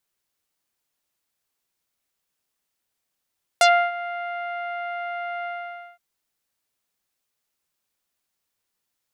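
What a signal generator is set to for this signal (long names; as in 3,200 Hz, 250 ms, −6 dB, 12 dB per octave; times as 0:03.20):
subtractive voice saw F5 24 dB per octave, low-pass 2,200 Hz, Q 1.2, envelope 2.5 octaves, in 0.09 s, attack 1.9 ms, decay 0.30 s, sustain −17 dB, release 0.53 s, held 1.84 s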